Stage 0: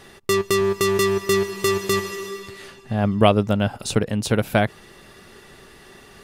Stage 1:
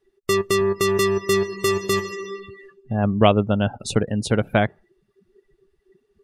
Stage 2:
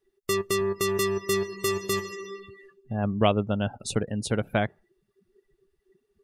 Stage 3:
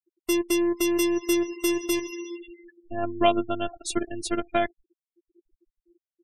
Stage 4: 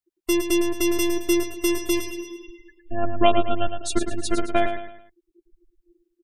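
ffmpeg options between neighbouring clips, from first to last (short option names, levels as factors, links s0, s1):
-af "afftdn=nr=32:nf=-33"
-af "highshelf=f=7200:g=7,volume=0.473"
-af "afftfilt=real='hypot(re,im)*cos(PI*b)':imag='0':win_size=512:overlap=0.75,afftfilt=real='re*gte(hypot(re,im),0.00562)':imag='im*gte(hypot(re,im),0.00562)':win_size=1024:overlap=0.75,volume=1.78"
-filter_complex "[0:a]lowshelf=f=72:g=10.5,asplit=2[s0][s1];[s1]aecho=0:1:109|218|327|436:0.398|0.155|0.0606|0.0236[s2];[s0][s2]amix=inputs=2:normalize=0,volume=1.26"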